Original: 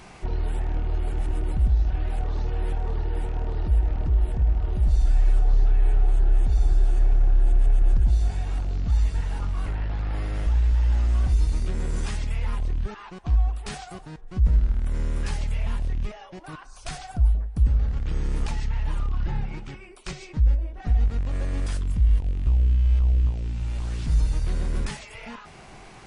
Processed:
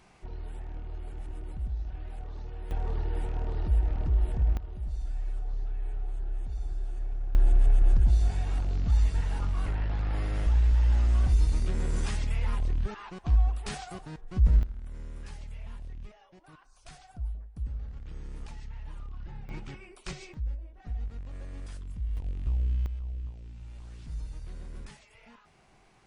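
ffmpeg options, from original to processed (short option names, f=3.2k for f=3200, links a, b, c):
-af "asetnsamples=n=441:p=0,asendcmd='2.71 volume volume -4dB;4.57 volume volume -14dB;7.35 volume volume -2dB;14.63 volume volume -15dB;19.49 volume volume -4dB;20.34 volume volume -14dB;22.17 volume volume -8dB;22.86 volume volume -16dB',volume=-13dB"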